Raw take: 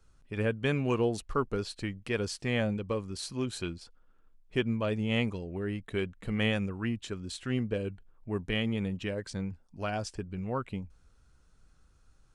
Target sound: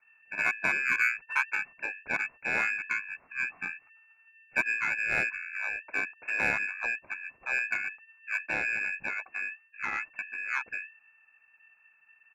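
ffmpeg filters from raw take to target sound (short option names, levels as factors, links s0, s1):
-filter_complex "[0:a]lowpass=f=2300:t=q:w=0.5098,lowpass=f=2300:t=q:w=0.6013,lowpass=f=2300:t=q:w=0.9,lowpass=f=2300:t=q:w=2.563,afreqshift=-2700,aeval=exprs='0.188*(cos(1*acos(clip(val(0)/0.188,-1,1)))-cos(1*PI/2))+0.00841*(cos(3*acos(clip(val(0)/0.188,-1,1)))-cos(3*PI/2))+0.00531*(cos(7*acos(clip(val(0)/0.188,-1,1)))-cos(7*PI/2))':c=same,asplit=2[s0][s1];[s1]asetrate=29433,aresample=44100,atempo=1.49831,volume=0.794[s2];[s0][s2]amix=inputs=2:normalize=0"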